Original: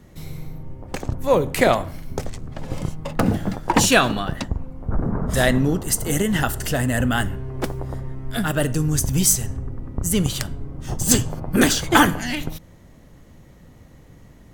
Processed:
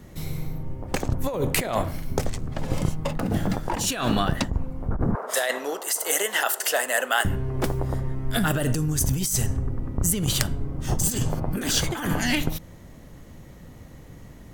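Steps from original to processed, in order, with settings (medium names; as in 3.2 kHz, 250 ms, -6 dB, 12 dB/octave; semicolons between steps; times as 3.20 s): 5.15–7.25 s: high-pass 500 Hz 24 dB/octave; compressor with a negative ratio -23 dBFS, ratio -1; treble shelf 11 kHz +4 dB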